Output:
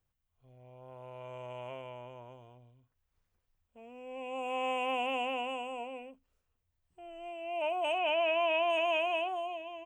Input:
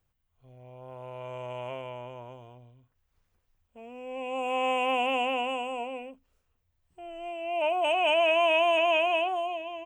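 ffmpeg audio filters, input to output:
-filter_complex "[0:a]asettb=1/sr,asplit=3[a][b][c];[a]atrim=end=7.984[d];[b]atrim=start=7.98:end=8.7,asetpts=PTS-STARTPTS,afade=t=in:d=0.004:c=qsin,afade=t=out:st=0.716:d=0.004:c=qsin,lowpass=3.9k[e];[c]atrim=start=8.696[f];[d][e]acrossfade=d=0.004:c1=hsin:c2=qsin[g];[g][f]acrossfade=d=0.004:c1=qsin:c2=hsin,volume=-6dB"

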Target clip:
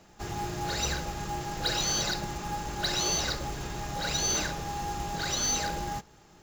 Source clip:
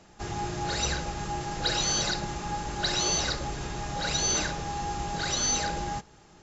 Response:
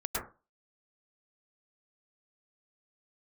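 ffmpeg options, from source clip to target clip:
-af "acontrast=49,acrusher=bits=4:mode=log:mix=0:aa=0.000001,volume=-7.5dB"

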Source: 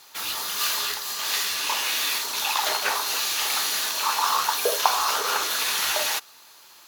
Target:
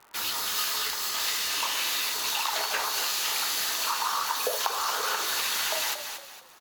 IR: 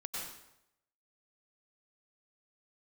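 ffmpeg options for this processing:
-filter_complex "[0:a]acrossover=split=1900[a][b];[b]acrusher=bits=6:mix=0:aa=0.000001[c];[a][c]amix=inputs=2:normalize=0,asetrate=45938,aresample=44100,asplit=4[d][e][f][g];[e]adelay=230,afreqshift=-38,volume=-11.5dB[h];[f]adelay=460,afreqshift=-76,volume=-21.1dB[i];[g]adelay=690,afreqshift=-114,volume=-30.8dB[j];[d][h][i][j]amix=inputs=4:normalize=0,acompressor=threshold=-25dB:ratio=5"

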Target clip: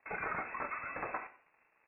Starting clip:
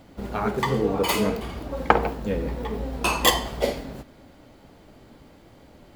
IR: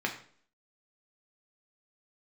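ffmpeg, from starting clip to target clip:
-filter_complex "[0:a]equalizer=f=130:t=o:w=2.1:g=8,aresample=8000,aeval=exprs='(mod(3.35*val(0)+1,2)-1)/3.35':c=same,aresample=44100,acompressor=threshold=-26dB:ratio=2,asetrate=139797,aresample=44100,aderivative,aeval=exprs='sgn(val(0))*max(abs(val(0))-0.00126,0)':c=same,asplit=2[a][b];[1:a]atrim=start_sample=2205,lowshelf=f=270:g=11[c];[b][c]afir=irnorm=-1:irlink=0,volume=-6dB[d];[a][d]amix=inputs=2:normalize=0,lowpass=f=2.4k:t=q:w=0.5098,lowpass=f=2.4k:t=q:w=0.6013,lowpass=f=2.4k:t=q:w=0.9,lowpass=f=2.4k:t=q:w=2.563,afreqshift=-2800"

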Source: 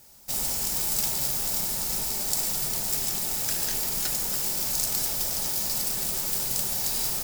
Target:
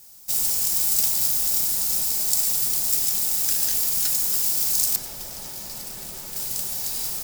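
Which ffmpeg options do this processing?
-af "asetnsamples=n=441:p=0,asendcmd='4.96 highshelf g -3;6.36 highshelf g 4.5',highshelf=f=3.4k:g=11,volume=-4.5dB"

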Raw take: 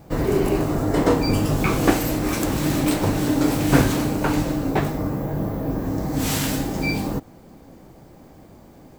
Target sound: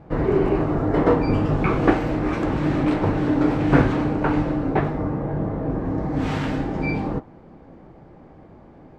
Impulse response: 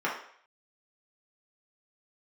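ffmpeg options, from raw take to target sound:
-filter_complex "[0:a]lowpass=2.1k,asplit=2[a][b];[1:a]atrim=start_sample=2205,atrim=end_sample=3087[c];[b][c]afir=irnorm=-1:irlink=0,volume=-22dB[d];[a][d]amix=inputs=2:normalize=0"

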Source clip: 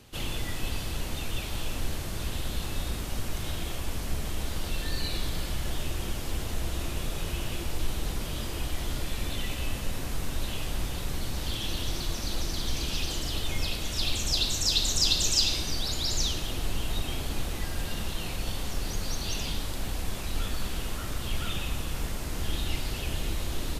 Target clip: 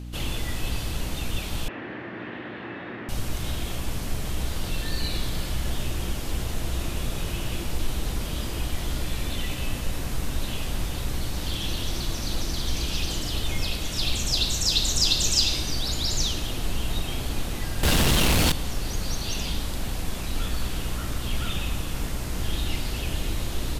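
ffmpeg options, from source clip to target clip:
-filter_complex "[0:a]aeval=exprs='val(0)+0.0126*(sin(2*PI*60*n/s)+sin(2*PI*2*60*n/s)/2+sin(2*PI*3*60*n/s)/3+sin(2*PI*4*60*n/s)/4+sin(2*PI*5*60*n/s)/5)':c=same,asettb=1/sr,asplit=3[a][b][c];[a]atrim=end=1.684[d];[b]atrim=start=1.68:end=3.09,asetpts=PTS-STARTPTS,afade=t=in:d=0.004:c=qsin,afade=t=out:st=1.406:d=0.004:c=qsin,highpass=f=150:w=0.5412,highpass=f=150:w=1.3066,equalizer=f=160:t=q:w=4:g=-10,equalizer=f=340:t=q:w=4:g=5,equalizer=f=1.8k:t=q:w=4:g=9,lowpass=f=2.4k:w=0.5412,lowpass=f=2.4k:w=1.3066[e];[c]atrim=start=3.086[f];[d][e]acrossfade=d=0.004:c1=hsin:c2=qsin[g];[g][f]acrossfade=d=0.004:c1=qsin:c2=hsin,asettb=1/sr,asplit=3[h][i][j];[h]atrim=end=17.834[k];[i]atrim=start=17.83:end=18.52,asetpts=PTS-STARTPTS,afade=t=in:d=0.004:c=qsin,afade=t=out:st=0.686:d=0.004:c=qsin,aeval=exprs='0.119*sin(PI/2*3.98*val(0)/0.119)':c=same[l];[j]atrim=start=18.516[m];[k][l]acrossfade=d=0.004:c1=hsin:c2=qsin[n];[n][m]acrossfade=d=0.004:c1=qsin:c2=hsin,volume=2.5dB"

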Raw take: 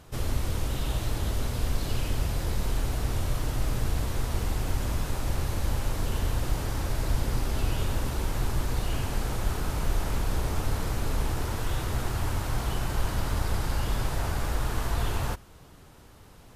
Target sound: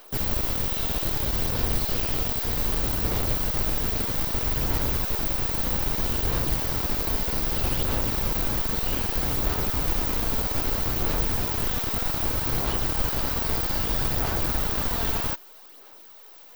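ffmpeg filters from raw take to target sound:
-filter_complex "[0:a]bass=f=250:g=-5,treble=f=4k:g=10,aphaser=in_gain=1:out_gain=1:delay=4.5:decay=0.39:speed=0.63:type=sinusoidal,acrossover=split=300|6500[a][b][c];[a]acrusher=bits=4:mix=0:aa=0.000001[d];[c]aeval=exprs='abs(val(0))':c=same[e];[d][b][e]amix=inputs=3:normalize=0,aexciter=amount=2.9:drive=7.6:freq=10k"

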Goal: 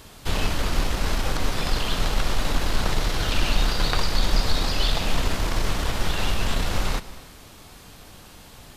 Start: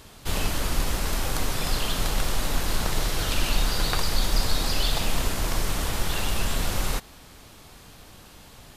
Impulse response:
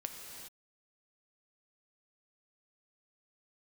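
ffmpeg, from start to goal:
-filter_complex "[0:a]aeval=exprs='0.355*(cos(1*acos(clip(val(0)/0.355,-1,1)))-cos(1*PI/2))+0.00708*(cos(6*acos(clip(val(0)/0.355,-1,1)))-cos(6*PI/2))+0.0158*(cos(8*acos(clip(val(0)/0.355,-1,1)))-cos(8*PI/2))':c=same,acrossover=split=6000[a][b];[b]acompressor=threshold=-45dB:ratio=4:attack=1:release=60[c];[a][c]amix=inputs=2:normalize=0,asplit=2[d][e];[1:a]atrim=start_sample=2205,asetrate=57330,aresample=44100[f];[e][f]afir=irnorm=-1:irlink=0,volume=-6dB[g];[d][g]amix=inputs=2:normalize=0"

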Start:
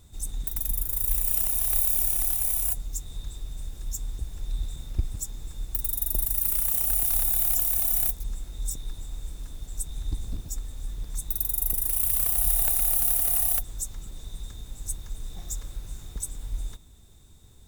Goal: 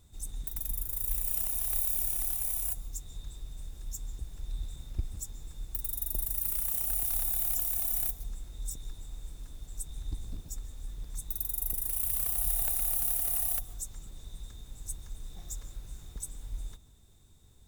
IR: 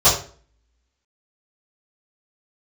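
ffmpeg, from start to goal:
-filter_complex "[0:a]asplit=2[a][b];[1:a]atrim=start_sample=2205,adelay=123[c];[b][c]afir=irnorm=-1:irlink=0,volume=-39.5dB[d];[a][d]amix=inputs=2:normalize=0,volume=-6.5dB"

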